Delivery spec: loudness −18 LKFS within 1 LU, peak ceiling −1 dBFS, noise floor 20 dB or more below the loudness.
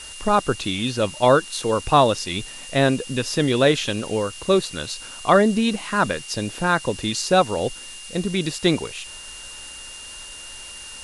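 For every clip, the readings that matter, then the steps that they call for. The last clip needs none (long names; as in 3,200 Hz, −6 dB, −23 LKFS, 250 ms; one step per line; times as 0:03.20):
interfering tone 2,800 Hz; level of the tone −39 dBFS; background noise floor −38 dBFS; target noise floor −42 dBFS; integrated loudness −21.5 LKFS; sample peak −1.5 dBFS; target loudness −18.0 LKFS
→ notch filter 2,800 Hz, Q 30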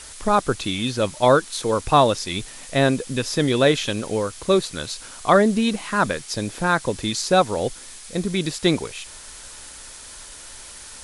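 interfering tone none found; background noise floor −41 dBFS; target noise floor −42 dBFS
→ noise reduction from a noise print 6 dB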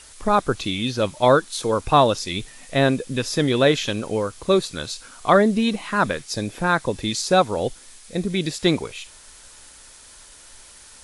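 background noise floor −46 dBFS; integrated loudness −21.5 LKFS; sample peak −2.0 dBFS; target loudness −18.0 LKFS
→ level +3.5 dB
brickwall limiter −1 dBFS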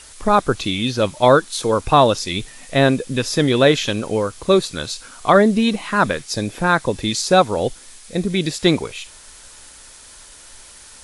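integrated loudness −18.0 LKFS; sample peak −1.0 dBFS; background noise floor −43 dBFS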